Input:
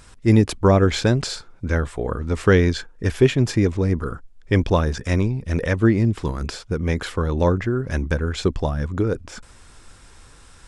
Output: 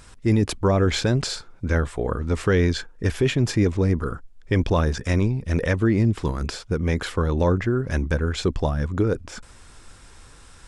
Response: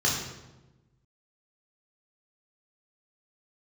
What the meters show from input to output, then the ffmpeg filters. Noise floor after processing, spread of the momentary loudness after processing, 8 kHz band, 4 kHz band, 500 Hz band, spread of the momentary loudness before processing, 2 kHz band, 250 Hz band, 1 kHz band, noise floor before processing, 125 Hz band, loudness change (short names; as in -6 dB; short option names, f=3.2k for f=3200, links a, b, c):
-48 dBFS, 7 LU, 0.0 dB, -0.5 dB, -2.5 dB, 10 LU, -2.0 dB, -2.5 dB, -2.5 dB, -48 dBFS, -1.5 dB, -2.0 dB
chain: -af "alimiter=limit=-11dB:level=0:latency=1:release=13"